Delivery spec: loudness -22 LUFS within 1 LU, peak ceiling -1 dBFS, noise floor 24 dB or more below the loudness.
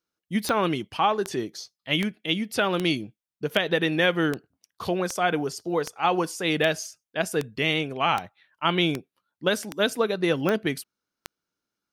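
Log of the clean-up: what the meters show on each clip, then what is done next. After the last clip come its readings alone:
clicks found 15; loudness -26.0 LUFS; peak level -8.5 dBFS; loudness target -22.0 LUFS
-> de-click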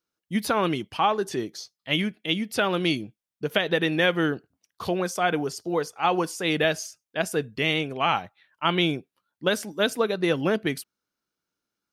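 clicks found 0; loudness -25.5 LUFS; peak level -8.5 dBFS; loudness target -22.0 LUFS
-> trim +3.5 dB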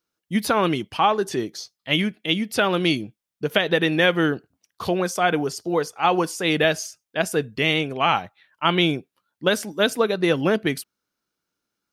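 loudness -22.0 LUFS; peak level -5.0 dBFS; noise floor -84 dBFS

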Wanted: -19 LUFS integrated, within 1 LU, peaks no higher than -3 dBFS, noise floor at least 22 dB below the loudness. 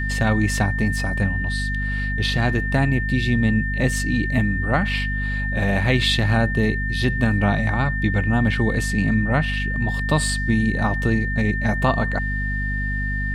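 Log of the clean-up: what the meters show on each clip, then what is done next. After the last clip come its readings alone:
hum 50 Hz; highest harmonic 250 Hz; hum level -22 dBFS; steady tone 1.8 kHz; tone level -26 dBFS; loudness -21.0 LUFS; peak level -5.5 dBFS; loudness target -19.0 LUFS
-> hum notches 50/100/150/200/250 Hz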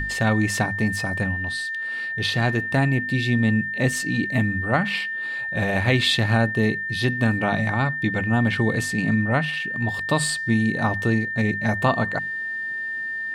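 hum not found; steady tone 1.8 kHz; tone level -26 dBFS
-> band-stop 1.8 kHz, Q 30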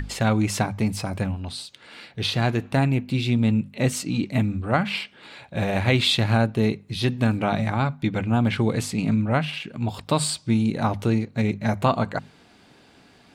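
steady tone not found; loudness -24.0 LUFS; peak level -6.0 dBFS; loudness target -19.0 LUFS
-> trim +5 dB; peak limiter -3 dBFS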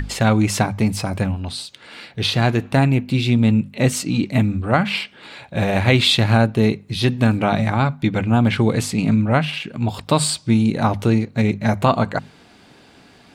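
loudness -19.0 LUFS; peak level -3.0 dBFS; noise floor -49 dBFS

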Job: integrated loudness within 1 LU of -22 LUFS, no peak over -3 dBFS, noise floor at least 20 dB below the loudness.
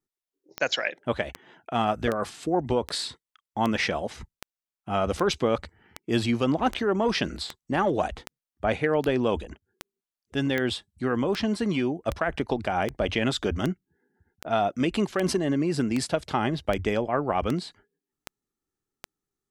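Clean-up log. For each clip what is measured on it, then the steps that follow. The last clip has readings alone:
clicks found 25; loudness -27.0 LUFS; peak level -9.5 dBFS; loudness target -22.0 LUFS
-> de-click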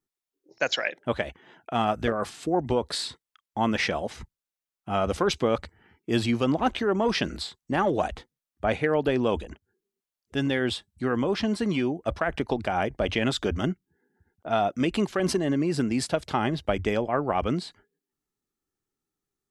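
clicks found 0; loudness -27.0 LUFS; peak level -9.5 dBFS; loudness target -22.0 LUFS
-> trim +5 dB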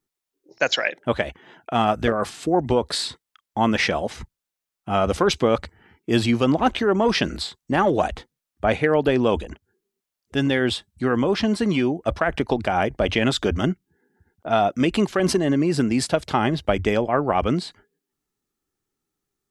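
loudness -22.0 LUFS; peak level -4.5 dBFS; noise floor -86 dBFS

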